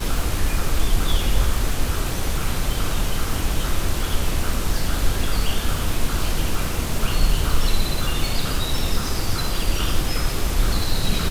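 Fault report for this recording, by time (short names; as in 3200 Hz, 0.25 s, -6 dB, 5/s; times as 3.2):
crackle 210/s -25 dBFS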